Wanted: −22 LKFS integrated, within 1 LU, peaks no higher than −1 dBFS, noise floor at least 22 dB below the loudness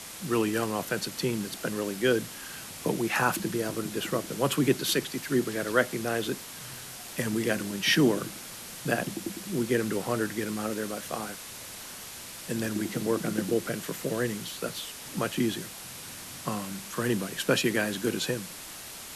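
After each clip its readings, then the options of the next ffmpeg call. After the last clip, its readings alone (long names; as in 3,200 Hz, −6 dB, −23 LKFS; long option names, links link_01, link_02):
background noise floor −43 dBFS; target noise floor −52 dBFS; integrated loudness −30.0 LKFS; sample peak −10.0 dBFS; target loudness −22.0 LKFS
→ -af "afftdn=noise_reduction=9:noise_floor=-43"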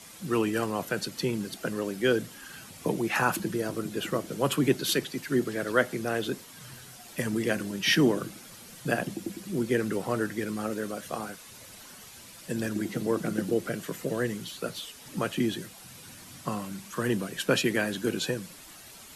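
background noise floor −49 dBFS; target noise floor −52 dBFS
→ -af "afftdn=noise_reduction=6:noise_floor=-49"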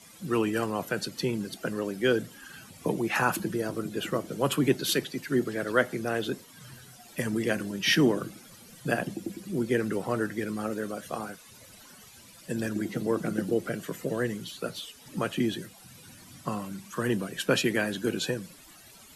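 background noise floor −52 dBFS; integrated loudness −30.0 LKFS; sample peak −10.0 dBFS; target loudness −22.0 LKFS
→ -af "volume=8dB"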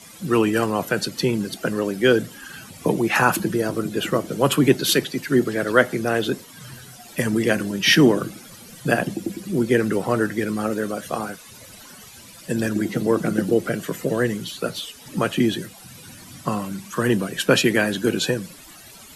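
integrated loudness −22.0 LKFS; sample peak −2.0 dBFS; background noise floor −44 dBFS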